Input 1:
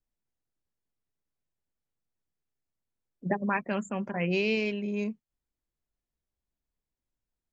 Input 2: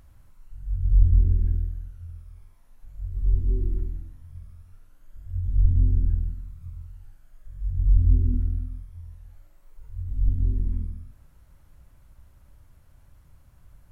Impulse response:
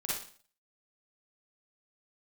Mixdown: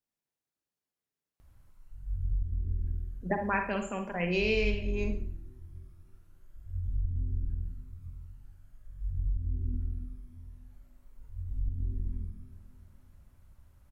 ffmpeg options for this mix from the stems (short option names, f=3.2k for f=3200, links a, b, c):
-filter_complex "[0:a]highpass=f=230:p=1,volume=-3.5dB,asplit=2[a][b];[b]volume=-5.5dB[c];[1:a]acompressor=threshold=-21dB:ratio=6,adelay=1400,volume=-6dB,asplit=2[d][e];[e]volume=-13.5dB[f];[2:a]atrim=start_sample=2205[g];[c][g]afir=irnorm=-1:irlink=0[h];[f]aecho=0:1:294|588|882|1176|1470|1764|2058|2352:1|0.56|0.314|0.176|0.0983|0.0551|0.0308|0.0173[i];[a][d][h][i]amix=inputs=4:normalize=0"